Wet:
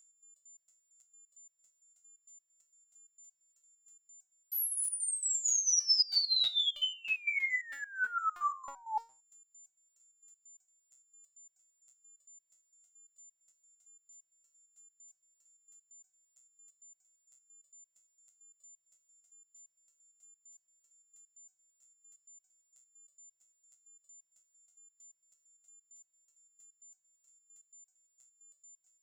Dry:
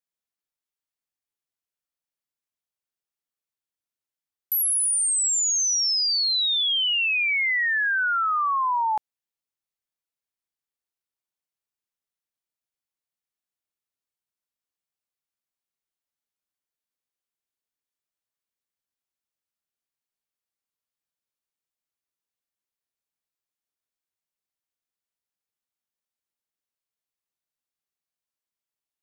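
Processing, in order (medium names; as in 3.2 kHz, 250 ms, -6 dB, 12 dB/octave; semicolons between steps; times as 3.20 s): peaking EQ 5.1 kHz +15 dB 0.64 oct; in parallel at +2.5 dB: peak limiter -16.5 dBFS, peak gain reduction 11.5 dB; on the sum: whistle 7.2 kHz -36 dBFS; crackling interface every 0.32 s, samples 64, repeat, from 0.36 s; resonator arpeggio 8.8 Hz 130–760 Hz; trim -7.5 dB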